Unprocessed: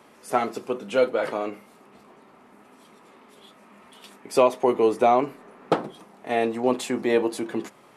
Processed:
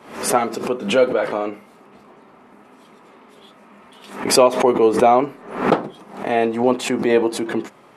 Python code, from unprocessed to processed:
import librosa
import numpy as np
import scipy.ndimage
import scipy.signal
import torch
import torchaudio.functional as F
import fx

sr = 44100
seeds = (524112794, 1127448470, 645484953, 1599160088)

y = fx.high_shelf(x, sr, hz=4600.0, db=-7.0)
y = fx.pre_swell(y, sr, db_per_s=100.0)
y = F.gain(torch.from_numpy(y), 5.0).numpy()